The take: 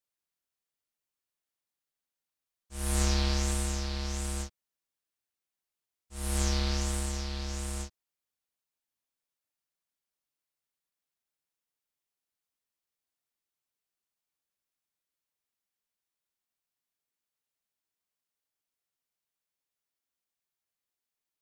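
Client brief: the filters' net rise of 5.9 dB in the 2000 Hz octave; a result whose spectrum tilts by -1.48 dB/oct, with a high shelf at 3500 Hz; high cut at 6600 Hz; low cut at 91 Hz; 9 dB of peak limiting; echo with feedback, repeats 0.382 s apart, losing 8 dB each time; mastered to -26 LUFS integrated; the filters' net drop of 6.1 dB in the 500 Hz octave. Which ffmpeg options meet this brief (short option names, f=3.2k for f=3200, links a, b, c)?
-af "highpass=91,lowpass=6.6k,equalizer=f=500:t=o:g=-9,equalizer=f=2k:t=o:g=5.5,highshelf=f=3.5k:g=8,alimiter=limit=-20.5dB:level=0:latency=1,aecho=1:1:382|764|1146|1528|1910:0.398|0.159|0.0637|0.0255|0.0102,volume=9dB"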